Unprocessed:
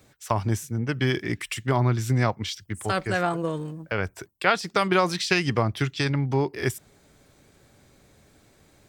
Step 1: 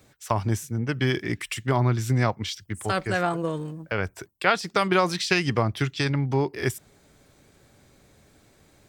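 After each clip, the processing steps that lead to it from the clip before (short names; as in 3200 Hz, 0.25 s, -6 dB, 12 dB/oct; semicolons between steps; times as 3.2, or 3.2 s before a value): nothing audible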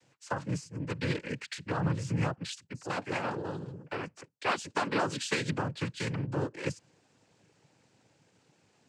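noise vocoder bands 8; gain -8 dB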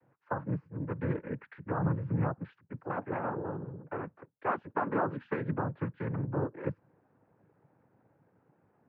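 LPF 1500 Hz 24 dB/oct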